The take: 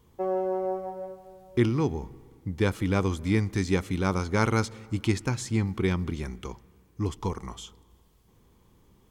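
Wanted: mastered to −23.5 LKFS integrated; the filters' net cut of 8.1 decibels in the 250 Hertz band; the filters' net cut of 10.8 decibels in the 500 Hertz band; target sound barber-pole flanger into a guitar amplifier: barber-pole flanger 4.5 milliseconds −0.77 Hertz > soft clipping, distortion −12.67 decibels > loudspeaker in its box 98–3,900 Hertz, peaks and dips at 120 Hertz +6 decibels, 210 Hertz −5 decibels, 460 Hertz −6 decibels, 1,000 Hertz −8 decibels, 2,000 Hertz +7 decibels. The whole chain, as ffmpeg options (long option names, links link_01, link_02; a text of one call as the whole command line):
ffmpeg -i in.wav -filter_complex "[0:a]equalizer=frequency=250:width_type=o:gain=-5.5,equalizer=frequency=500:width_type=o:gain=-9,asplit=2[link_01][link_02];[link_02]adelay=4.5,afreqshift=-0.77[link_03];[link_01][link_03]amix=inputs=2:normalize=1,asoftclip=threshold=-27.5dB,highpass=98,equalizer=frequency=120:width_type=q:width=4:gain=6,equalizer=frequency=210:width_type=q:width=4:gain=-5,equalizer=frequency=460:width_type=q:width=4:gain=-6,equalizer=frequency=1000:width_type=q:width=4:gain=-8,equalizer=frequency=2000:width_type=q:width=4:gain=7,lowpass=frequency=3900:width=0.5412,lowpass=frequency=3900:width=1.3066,volume=14dB" out.wav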